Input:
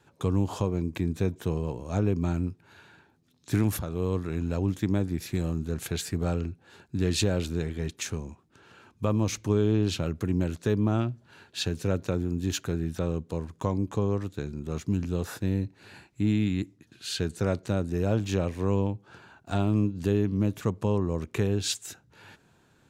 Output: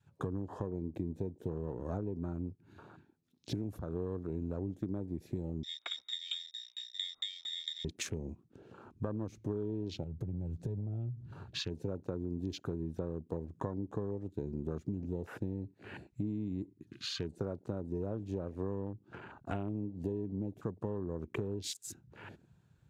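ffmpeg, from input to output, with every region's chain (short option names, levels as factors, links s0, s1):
-filter_complex "[0:a]asettb=1/sr,asplit=3[s0][s1][s2];[s0]atrim=end=5.634[s3];[s1]atrim=start=5.63:end=7.85,asetpts=PTS-STARTPTS,afade=t=in:d=0.004:c=qsin,afade=t=out:st=2.216:d=0.004:c=qsin,aeval=exprs='val(0)+0.01*(sin(2*PI*60*n/s)+sin(2*PI*2*60*n/s)/2+sin(2*PI*3*60*n/s)/3+sin(2*PI*4*60*n/s)/4+sin(2*PI*5*60*n/s)/5)':c=same,lowpass=f=3200:t=q:w=0.5098,lowpass=f=3200:t=q:w=0.6013,lowpass=f=3200:t=q:w=0.9,lowpass=f=3200:t=q:w=2.563,afreqshift=-3800,aeval=exprs='val(0)*pow(10,-23*if(lt(mod(4.4*n/s,1),2*abs(4.4)/1000),1-mod(4.4*n/s,1)/(2*abs(4.4)/1000),(mod(4.4*n/s,1)-2*abs(4.4)/1000)/(1-2*abs(4.4)/1000))/20)':c=same[s4];[s2]atrim=start=7.846[s5];[s3][s4]acrossfade=d=0.004:c1=hsin:c2=qsin[s6];[s6][s5]acrossfade=d=0.004:c1=qsin:c2=hsin,asettb=1/sr,asplit=3[s7][s8][s9];[s7]atrim=end=10.034[s10];[s8]atrim=start=10.03:end=11.59,asetpts=PTS-STARTPTS,afade=t=in:d=0.004:c=qsin,afade=t=out:st=1.556:d=0.004:c=qsin,lowshelf=f=190:t=q:w=1.5:g=10,acompressor=threshold=0.0224:ratio=4:attack=3.2:release=140:knee=1:detection=peak[s11];[s9]atrim=start=11.586[s12];[s10][s11]acrossfade=d=0.004:c1=hsin:c2=qsin[s13];[s13][s12]acrossfade=d=0.004:c1=qsin:c2=hsin,acompressor=threshold=0.0126:ratio=12,adynamicequalizer=threshold=0.00178:dfrequency=370:dqfactor=0.99:tfrequency=370:tqfactor=0.99:attack=5:release=100:ratio=0.375:range=2.5:mode=boostabove:tftype=bell,afwtdn=0.00316,volume=1.33"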